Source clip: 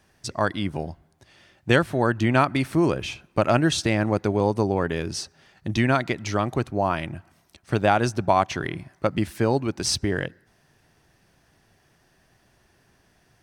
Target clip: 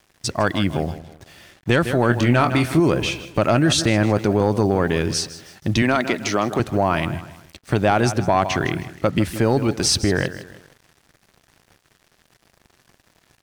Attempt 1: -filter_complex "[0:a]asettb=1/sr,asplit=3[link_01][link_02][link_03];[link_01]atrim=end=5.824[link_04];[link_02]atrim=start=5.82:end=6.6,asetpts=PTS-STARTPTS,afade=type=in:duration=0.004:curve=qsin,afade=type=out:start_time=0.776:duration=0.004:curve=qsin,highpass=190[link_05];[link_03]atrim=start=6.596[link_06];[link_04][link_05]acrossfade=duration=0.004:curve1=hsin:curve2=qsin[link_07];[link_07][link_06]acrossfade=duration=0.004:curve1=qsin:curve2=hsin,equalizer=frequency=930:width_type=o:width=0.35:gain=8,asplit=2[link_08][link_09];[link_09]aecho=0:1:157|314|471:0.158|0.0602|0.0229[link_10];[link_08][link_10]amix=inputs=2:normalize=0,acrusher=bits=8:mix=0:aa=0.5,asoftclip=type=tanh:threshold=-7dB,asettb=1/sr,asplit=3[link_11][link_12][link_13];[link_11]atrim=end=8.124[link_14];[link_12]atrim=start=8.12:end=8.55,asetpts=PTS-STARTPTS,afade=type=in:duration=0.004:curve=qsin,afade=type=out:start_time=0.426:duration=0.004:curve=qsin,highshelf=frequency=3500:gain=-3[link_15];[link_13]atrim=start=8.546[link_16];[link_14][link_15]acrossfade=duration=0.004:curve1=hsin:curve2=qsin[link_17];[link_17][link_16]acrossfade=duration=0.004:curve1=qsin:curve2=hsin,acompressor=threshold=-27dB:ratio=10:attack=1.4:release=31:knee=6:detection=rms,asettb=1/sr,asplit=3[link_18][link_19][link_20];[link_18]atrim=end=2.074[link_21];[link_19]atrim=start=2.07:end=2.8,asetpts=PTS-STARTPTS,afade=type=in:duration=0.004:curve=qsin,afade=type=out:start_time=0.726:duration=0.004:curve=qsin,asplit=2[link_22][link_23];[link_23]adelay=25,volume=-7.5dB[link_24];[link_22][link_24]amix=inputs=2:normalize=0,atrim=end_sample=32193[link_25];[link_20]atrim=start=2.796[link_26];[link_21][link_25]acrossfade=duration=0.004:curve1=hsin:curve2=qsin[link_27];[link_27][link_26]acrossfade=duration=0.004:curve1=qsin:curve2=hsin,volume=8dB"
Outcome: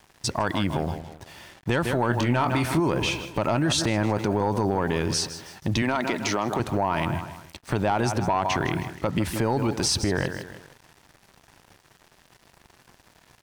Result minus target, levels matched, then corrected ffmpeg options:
downward compressor: peak gain reduction +8.5 dB; 1,000 Hz band +2.0 dB
-filter_complex "[0:a]asettb=1/sr,asplit=3[link_01][link_02][link_03];[link_01]atrim=end=5.824[link_04];[link_02]atrim=start=5.82:end=6.6,asetpts=PTS-STARTPTS,afade=type=in:duration=0.004:curve=qsin,afade=type=out:start_time=0.776:duration=0.004:curve=qsin,highpass=190[link_05];[link_03]atrim=start=6.596[link_06];[link_04][link_05]acrossfade=duration=0.004:curve1=hsin:curve2=qsin[link_07];[link_07][link_06]acrossfade=duration=0.004:curve1=qsin:curve2=hsin,equalizer=frequency=930:width_type=o:width=0.35:gain=-2,asplit=2[link_08][link_09];[link_09]aecho=0:1:157|314|471:0.158|0.0602|0.0229[link_10];[link_08][link_10]amix=inputs=2:normalize=0,acrusher=bits=8:mix=0:aa=0.5,asoftclip=type=tanh:threshold=-7dB,asettb=1/sr,asplit=3[link_11][link_12][link_13];[link_11]atrim=end=8.124[link_14];[link_12]atrim=start=8.12:end=8.55,asetpts=PTS-STARTPTS,afade=type=in:duration=0.004:curve=qsin,afade=type=out:start_time=0.426:duration=0.004:curve=qsin,highshelf=frequency=3500:gain=-3[link_15];[link_13]atrim=start=8.546[link_16];[link_14][link_15]acrossfade=duration=0.004:curve1=hsin:curve2=qsin[link_17];[link_17][link_16]acrossfade=duration=0.004:curve1=qsin:curve2=hsin,acompressor=threshold=-19dB:ratio=10:attack=1.4:release=31:knee=6:detection=rms,asettb=1/sr,asplit=3[link_18][link_19][link_20];[link_18]atrim=end=2.074[link_21];[link_19]atrim=start=2.07:end=2.8,asetpts=PTS-STARTPTS,afade=type=in:duration=0.004:curve=qsin,afade=type=out:start_time=0.726:duration=0.004:curve=qsin,asplit=2[link_22][link_23];[link_23]adelay=25,volume=-7.5dB[link_24];[link_22][link_24]amix=inputs=2:normalize=0,atrim=end_sample=32193[link_25];[link_20]atrim=start=2.796[link_26];[link_21][link_25]acrossfade=duration=0.004:curve1=hsin:curve2=qsin[link_27];[link_27][link_26]acrossfade=duration=0.004:curve1=qsin:curve2=hsin,volume=8dB"

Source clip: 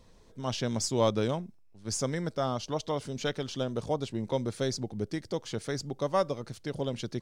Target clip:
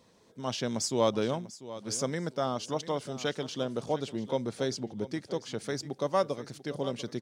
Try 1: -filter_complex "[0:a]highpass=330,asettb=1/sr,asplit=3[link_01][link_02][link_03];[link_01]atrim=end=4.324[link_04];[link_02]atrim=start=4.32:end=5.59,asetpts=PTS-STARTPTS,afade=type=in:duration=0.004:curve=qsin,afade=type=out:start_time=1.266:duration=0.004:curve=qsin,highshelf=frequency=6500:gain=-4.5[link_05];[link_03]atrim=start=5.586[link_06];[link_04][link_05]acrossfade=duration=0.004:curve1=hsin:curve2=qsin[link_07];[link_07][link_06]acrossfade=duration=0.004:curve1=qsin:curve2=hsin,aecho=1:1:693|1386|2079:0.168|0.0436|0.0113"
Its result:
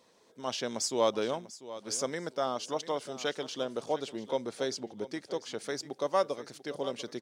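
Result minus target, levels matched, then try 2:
125 Hz band −10.0 dB
-filter_complex "[0:a]highpass=150,asettb=1/sr,asplit=3[link_01][link_02][link_03];[link_01]atrim=end=4.324[link_04];[link_02]atrim=start=4.32:end=5.59,asetpts=PTS-STARTPTS,afade=type=in:duration=0.004:curve=qsin,afade=type=out:start_time=1.266:duration=0.004:curve=qsin,highshelf=frequency=6500:gain=-4.5[link_05];[link_03]atrim=start=5.586[link_06];[link_04][link_05]acrossfade=duration=0.004:curve1=hsin:curve2=qsin[link_07];[link_07][link_06]acrossfade=duration=0.004:curve1=qsin:curve2=hsin,aecho=1:1:693|1386|2079:0.168|0.0436|0.0113"

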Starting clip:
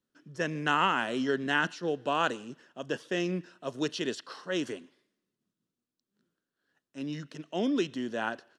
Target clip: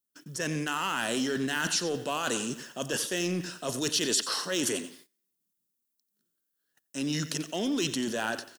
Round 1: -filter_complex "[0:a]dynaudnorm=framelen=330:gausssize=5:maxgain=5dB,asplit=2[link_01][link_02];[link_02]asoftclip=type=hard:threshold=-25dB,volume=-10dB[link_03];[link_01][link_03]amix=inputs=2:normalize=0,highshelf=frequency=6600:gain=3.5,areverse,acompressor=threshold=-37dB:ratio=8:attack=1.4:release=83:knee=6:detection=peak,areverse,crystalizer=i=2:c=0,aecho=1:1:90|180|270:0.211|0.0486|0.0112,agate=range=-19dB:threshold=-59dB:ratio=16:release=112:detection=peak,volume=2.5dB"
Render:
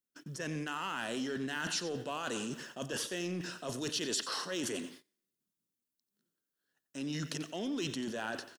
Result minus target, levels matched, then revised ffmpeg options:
downward compressor: peak gain reduction +6.5 dB; 8,000 Hz band −2.0 dB
-filter_complex "[0:a]dynaudnorm=framelen=330:gausssize=5:maxgain=5dB,asplit=2[link_01][link_02];[link_02]asoftclip=type=hard:threshold=-25dB,volume=-10dB[link_03];[link_01][link_03]amix=inputs=2:normalize=0,highshelf=frequency=6600:gain=13.5,areverse,acompressor=threshold=-29dB:ratio=8:attack=1.4:release=83:knee=6:detection=peak,areverse,crystalizer=i=2:c=0,aecho=1:1:90|180|270:0.211|0.0486|0.0112,agate=range=-19dB:threshold=-59dB:ratio=16:release=112:detection=peak,volume=2.5dB"

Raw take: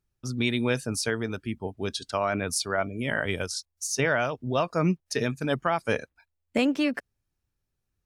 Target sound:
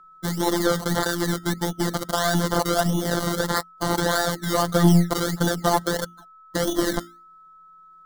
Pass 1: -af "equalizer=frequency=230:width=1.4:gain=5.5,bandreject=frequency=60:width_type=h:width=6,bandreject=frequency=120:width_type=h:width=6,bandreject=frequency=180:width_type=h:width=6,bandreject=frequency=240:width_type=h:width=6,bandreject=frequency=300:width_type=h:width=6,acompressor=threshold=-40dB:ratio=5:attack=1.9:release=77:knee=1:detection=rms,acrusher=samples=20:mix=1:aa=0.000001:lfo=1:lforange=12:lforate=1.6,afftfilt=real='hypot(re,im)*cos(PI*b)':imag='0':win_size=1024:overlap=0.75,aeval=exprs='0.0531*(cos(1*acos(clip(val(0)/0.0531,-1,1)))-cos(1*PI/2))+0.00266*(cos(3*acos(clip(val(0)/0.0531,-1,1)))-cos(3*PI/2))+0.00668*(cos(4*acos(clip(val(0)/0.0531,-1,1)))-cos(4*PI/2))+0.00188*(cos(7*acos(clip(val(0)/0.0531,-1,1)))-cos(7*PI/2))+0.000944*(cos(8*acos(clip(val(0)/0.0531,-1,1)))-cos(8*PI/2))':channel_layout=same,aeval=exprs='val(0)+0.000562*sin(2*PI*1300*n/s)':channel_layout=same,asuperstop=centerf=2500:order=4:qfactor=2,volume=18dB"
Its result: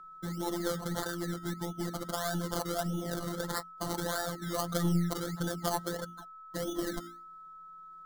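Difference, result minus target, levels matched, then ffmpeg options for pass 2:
downward compressor: peak gain reduction +9 dB
-af "equalizer=frequency=230:width=1.4:gain=5.5,bandreject=frequency=60:width_type=h:width=6,bandreject=frequency=120:width_type=h:width=6,bandreject=frequency=180:width_type=h:width=6,bandreject=frequency=240:width_type=h:width=6,bandreject=frequency=300:width_type=h:width=6,acompressor=threshold=-28.5dB:ratio=5:attack=1.9:release=77:knee=1:detection=rms,acrusher=samples=20:mix=1:aa=0.000001:lfo=1:lforange=12:lforate=1.6,afftfilt=real='hypot(re,im)*cos(PI*b)':imag='0':win_size=1024:overlap=0.75,aeval=exprs='0.0531*(cos(1*acos(clip(val(0)/0.0531,-1,1)))-cos(1*PI/2))+0.00266*(cos(3*acos(clip(val(0)/0.0531,-1,1)))-cos(3*PI/2))+0.00668*(cos(4*acos(clip(val(0)/0.0531,-1,1)))-cos(4*PI/2))+0.00188*(cos(7*acos(clip(val(0)/0.0531,-1,1)))-cos(7*PI/2))+0.000944*(cos(8*acos(clip(val(0)/0.0531,-1,1)))-cos(8*PI/2))':channel_layout=same,aeval=exprs='val(0)+0.000562*sin(2*PI*1300*n/s)':channel_layout=same,asuperstop=centerf=2500:order=4:qfactor=2,volume=18dB"

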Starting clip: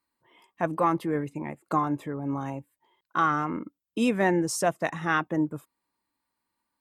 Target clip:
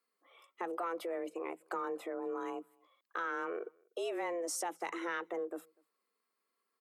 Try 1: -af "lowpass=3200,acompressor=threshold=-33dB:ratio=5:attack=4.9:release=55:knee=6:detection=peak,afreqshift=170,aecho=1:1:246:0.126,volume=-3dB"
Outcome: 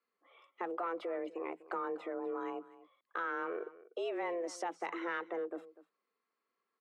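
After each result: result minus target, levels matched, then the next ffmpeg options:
echo-to-direct +12 dB; 4,000 Hz band −3.0 dB
-af "lowpass=3200,acompressor=threshold=-33dB:ratio=5:attack=4.9:release=55:knee=6:detection=peak,afreqshift=170,aecho=1:1:246:0.0316,volume=-3dB"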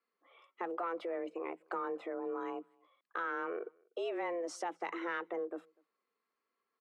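4,000 Hz band −3.0 dB
-af "acompressor=threshold=-33dB:ratio=5:attack=4.9:release=55:knee=6:detection=peak,afreqshift=170,aecho=1:1:246:0.0316,volume=-3dB"

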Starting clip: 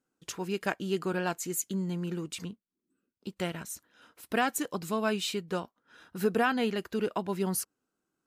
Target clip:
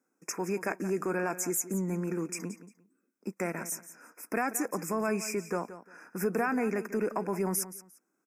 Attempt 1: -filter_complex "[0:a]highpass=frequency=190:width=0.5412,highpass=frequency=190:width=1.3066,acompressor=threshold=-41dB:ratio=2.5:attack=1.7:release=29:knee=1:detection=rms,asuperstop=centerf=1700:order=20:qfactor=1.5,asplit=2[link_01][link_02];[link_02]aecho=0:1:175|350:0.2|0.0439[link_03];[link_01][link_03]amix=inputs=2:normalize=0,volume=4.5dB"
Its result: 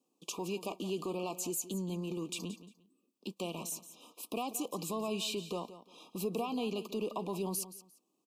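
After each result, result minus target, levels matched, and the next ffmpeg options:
4,000 Hz band +12.5 dB; downward compressor: peak gain reduction +5.5 dB
-filter_complex "[0:a]highpass=frequency=190:width=0.5412,highpass=frequency=190:width=1.3066,acompressor=threshold=-41dB:ratio=2.5:attack=1.7:release=29:knee=1:detection=rms,asuperstop=centerf=3600:order=20:qfactor=1.5,asplit=2[link_01][link_02];[link_02]aecho=0:1:175|350:0.2|0.0439[link_03];[link_01][link_03]amix=inputs=2:normalize=0,volume=4.5dB"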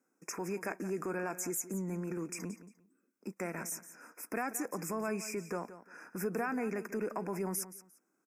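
downward compressor: peak gain reduction +5.5 dB
-filter_complex "[0:a]highpass=frequency=190:width=0.5412,highpass=frequency=190:width=1.3066,acompressor=threshold=-31.5dB:ratio=2.5:attack=1.7:release=29:knee=1:detection=rms,asuperstop=centerf=3600:order=20:qfactor=1.5,asplit=2[link_01][link_02];[link_02]aecho=0:1:175|350:0.2|0.0439[link_03];[link_01][link_03]amix=inputs=2:normalize=0,volume=4.5dB"

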